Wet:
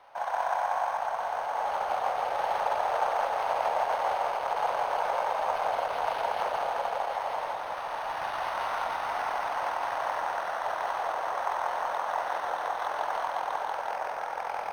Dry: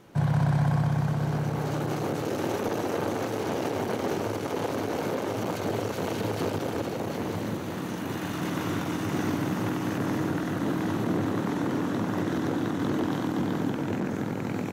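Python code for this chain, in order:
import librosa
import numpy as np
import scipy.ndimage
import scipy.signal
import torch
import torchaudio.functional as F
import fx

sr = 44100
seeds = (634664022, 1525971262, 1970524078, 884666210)

p1 = scipy.signal.sosfilt(scipy.signal.butter(6, 600.0, 'highpass', fs=sr, output='sos'), x)
p2 = fx.peak_eq(p1, sr, hz=830.0, db=8.5, octaves=0.98)
p3 = p2 + fx.echo_single(p2, sr, ms=166, db=-3.5, dry=0)
y = np.interp(np.arange(len(p3)), np.arange(len(p3))[::6], p3[::6])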